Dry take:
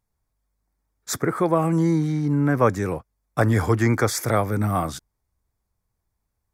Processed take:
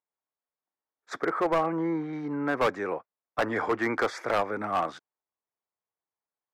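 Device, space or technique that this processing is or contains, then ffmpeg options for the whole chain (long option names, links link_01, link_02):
walkie-talkie: -filter_complex "[0:a]asettb=1/sr,asplit=3[link_01][link_02][link_03];[link_01]atrim=end=1.454[link_04];[link_02]atrim=start=1.45:end=2.13,asetpts=PTS-STARTPTS,afade=type=in:duration=0.004:curve=qsin,afade=type=out:start_time=0.676:duration=0.004:curve=qsin,acrossover=split=2800[link_05][link_06];[link_06]acompressor=threshold=-58dB:ratio=4:attack=1:release=60[link_07];[link_05][link_07]amix=inputs=2:normalize=0[link_08];[link_03]atrim=start=2.126[link_09];[link_04][link_08]acrossfade=duration=0.004:curve1=hsin:curve2=qsin[link_10];[link_10][link_09]acrossfade=duration=0.004:curve1=qsin:curve2=hsin,highpass=450,lowpass=2300,asoftclip=type=hard:threshold=-19.5dB,agate=range=-9dB:threshold=-41dB:ratio=16:detection=peak"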